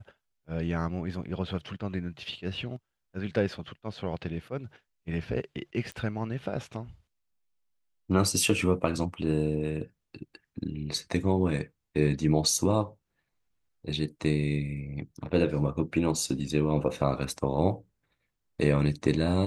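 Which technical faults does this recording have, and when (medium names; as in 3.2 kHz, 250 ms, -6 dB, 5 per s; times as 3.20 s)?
5.92 s: pop -25 dBFS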